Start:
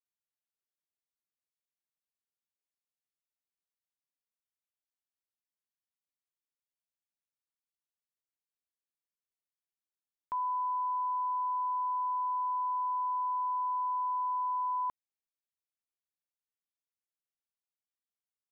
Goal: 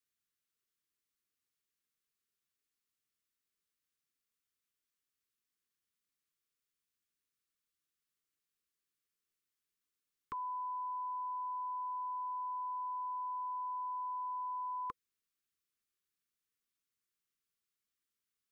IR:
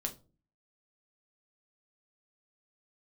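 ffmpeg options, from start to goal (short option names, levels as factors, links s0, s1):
-af "asuperstop=centerf=720:order=20:qfactor=1.3,volume=1.78"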